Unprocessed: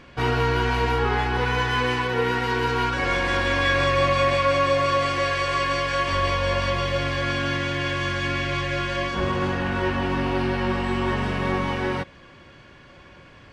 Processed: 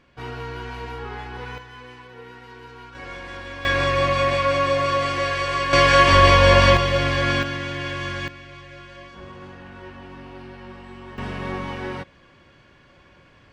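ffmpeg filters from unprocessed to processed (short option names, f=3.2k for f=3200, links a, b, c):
-af "asetnsamples=n=441:p=0,asendcmd='1.58 volume volume -19dB;2.95 volume volume -13dB;3.65 volume volume 0dB;5.73 volume volume 10dB;6.77 volume volume 4dB;7.43 volume volume -3dB;8.28 volume volume -16dB;11.18 volume volume -5dB',volume=-11dB"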